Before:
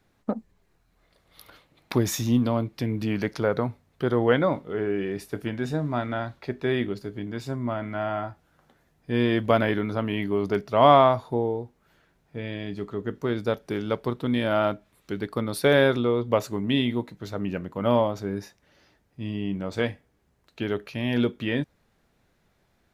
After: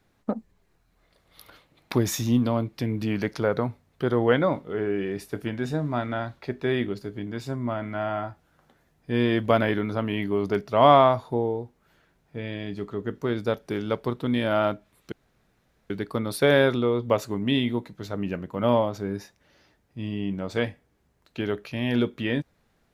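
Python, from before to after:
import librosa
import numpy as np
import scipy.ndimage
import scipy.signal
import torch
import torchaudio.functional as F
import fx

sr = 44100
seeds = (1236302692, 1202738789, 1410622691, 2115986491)

y = fx.edit(x, sr, fx.insert_room_tone(at_s=15.12, length_s=0.78), tone=tone)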